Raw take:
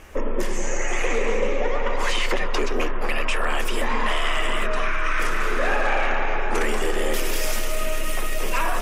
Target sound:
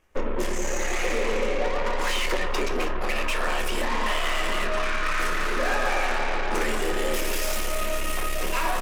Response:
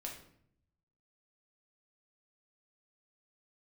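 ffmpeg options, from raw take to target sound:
-filter_complex "[0:a]aeval=exprs='0.224*(cos(1*acos(clip(val(0)/0.224,-1,1)))-cos(1*PI/2))+0.0282*(cos(7*acos(clip(val(0)/0.224,-1,1)))-cos(7*PI/2))':c=same,asplit=2[s0][s1];[s1]adelay=209.9,volume=0.0794,highshelf=f=4000:g=-4.72[s2];[s0][s2]amix=inputs=2:normalize=0,asplit=2[s3][s4];[1:a]atrim=start_sample=2205,atrim=end_sample=3087[s5];[s4][s5]afir=irnorm=-1:irlink=0,volume=1.41[s6];[s3][s6]amix=inputs=2:normalize=0,volume=0.376"

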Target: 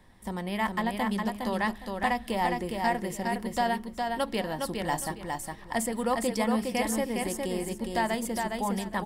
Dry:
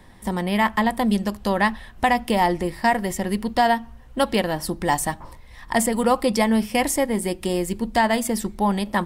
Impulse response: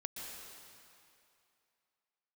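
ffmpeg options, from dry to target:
-filter_complex "[0:a]bandreject=f=69.52:t=h:w=4,bandreject=f=139.04:t=h:w=4,bandreject=f=208.56:t=h:w=4,bandreject=f=278.08:t=h:w=4,bandreject=f=347.6:t=h:w=4,bandreject=f=417.12:t=h:w=4,asplit=2[s0][s1];[s1]aecho=0:1:411|822|1233:0.631|0.151|0.0363[s2];[s0][s2]amix=inputs=2:normalize=0,volume=0.355"

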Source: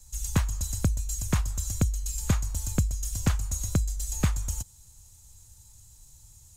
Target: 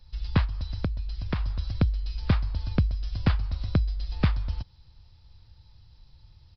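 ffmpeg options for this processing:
-filter_complex "[0:a]asplit=3[s0][s1][s2];[s0]afade=t=out:st=0.45:d=0.02[s3];[s1]acompressor=threshold=0.0398:ratio=3,afade=t=in:st=0.45:d=0.02,afade=t=out:st=1.4:d=0.02[s4];[s2]afade=t=in:st=1.4:d=0.02[s5];[s3][s4][s5]amix=inputs=3:normalize=0,aresample=11025,aresample=44100,volume=1.26"

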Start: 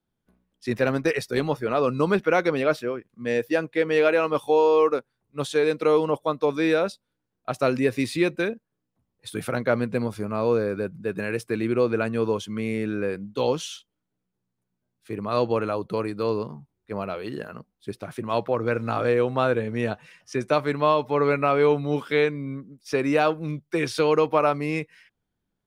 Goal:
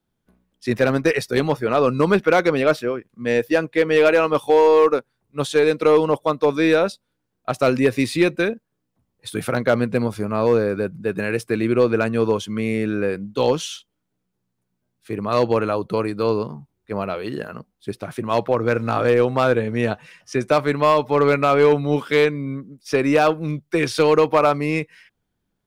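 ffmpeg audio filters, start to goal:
-af "aeval=exprs='0.447*(cos(1*acos(clip(val(0)/0.447,-1,1)))-cos(1*PI/2))+0.02*(cos(3*acos(clip(val(0)/0.447,-1,1)))-cos(3*PI/2))+0.00708*(cos(4*acos(clip(val(0)/0.447,-1,1)))-cos(4*PI/2))':c=same,asoftclip=type=hard:threshold=0.211,volume=2"

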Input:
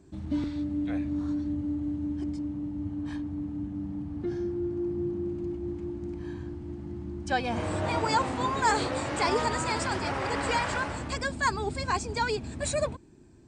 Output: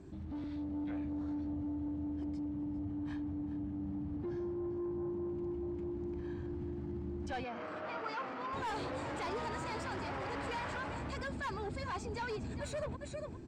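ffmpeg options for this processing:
-filter_complex "[0:a]aecho=1:1:404:0.141,asoftclip=type=tanh:threshold=0.0422,acompressor=threshold=0.00794:ratio=6,alimiter=level_in=7.5:limit=0.0631:level=0:latency=1:release=52,volume=0.133,asettb=1/sr,asplit=3[s0][s1][s2];[s0]atrim=end=7.444[s3];[s1]atrim=start=7.44:end=8.53,asetpts=PTS-STARTPTS,afade=t=in:d=0.004:c=qsin,afade=t=out:st=1.086:d=0.004:c=qsin,highpass=280,equalizer=f=340:t=q:w=4:g=-6,equalizer=f=900:t=q:w=4:g=-5,equalizer=f=1300:t=q:w=4:g=7,equalizer=f=3700:t=q:w=4:g=-6,lowpass=f=5400:w=0.5412,lowpass=f=5400:w=1.3066[s4];[s2]atrim=start=8.526[s5];[s3][s4]acrossfade=d=0.004:c1=hsin:c2=qsin[s6];[s6][s5]acrossfade=d=0.004:c1=qsin:c2=hsin,dynaudnorm=f=150:g=7:m=1.58,aemphasis=mode=reproduction:type=50fm,volume=1.41"

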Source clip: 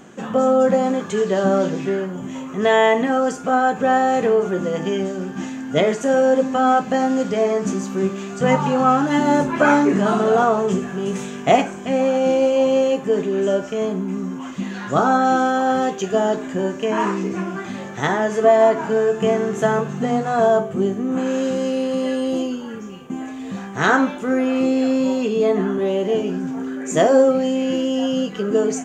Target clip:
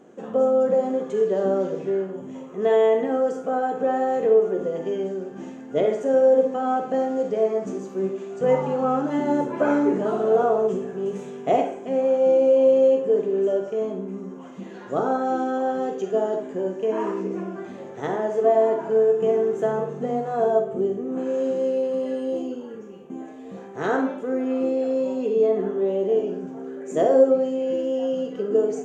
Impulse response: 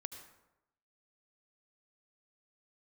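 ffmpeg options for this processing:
-filter_complex "[0:a]equalizer=f=450:w=0.72:g=15[s0];[1:a]atrim=start_sample=2205,asetrate=79380,aresample=44100[s1];[s0][s1]afir=irnorm=-1:irlink=0,volume=0.422"

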